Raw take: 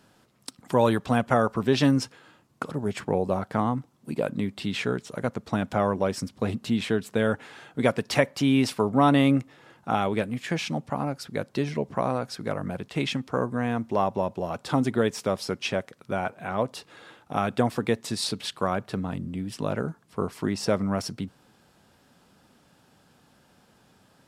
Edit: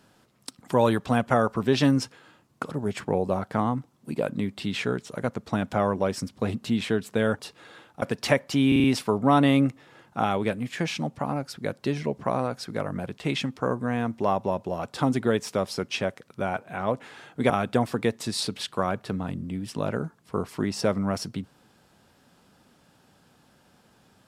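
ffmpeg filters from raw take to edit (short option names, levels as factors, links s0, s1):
-filter_complex "[0:a]asplit=9[s0][s1][s2][s3][s4][s5][s6][s7][s8];[s0]atrim=end=7.392[s9];[s1]atrim=start=16.708:end=17.342[s10];[s2]atrim=start=7.888:end=8.592[s11];[s3]atrim=start=8.548:end=8.592[s12];[s4]atrim=start=8.548:end=8.592[s13];[s5]atrim=start=8.548:end=8.592[s14];[s6]atrim=start=8.548:end=16.712[s15];[s7]atrim=start=7.388:end=7.892[s16];[s8]atrim=start=17.338[s17];[s9][s10]acrossfade=d=0.004:c1=hsin:c2=hsin[s18];[s18][s11]acrossfade=d=0.004:c1=hsin:c2=hsin[s19];[s19][s12]acrossfade=d=0.004:c1=hsin:c2=hsin[s20];[s20][s13]acrossfade=d=0.004:c1=hsin:c2=hsin[s21];[s21][s14]acrossfade=d=0.004:c1=hsin:c2=hsin[s22];[s22][s15]acrossfade=d=0.004:c1=hsin:c2=hsin[s23];[s23][s16]acrossfade=d=0.004:c1=hsin:c2=hsin[s24];[s24][s17]acrossfade=d=0.004:c1=hsin:c2=hsin"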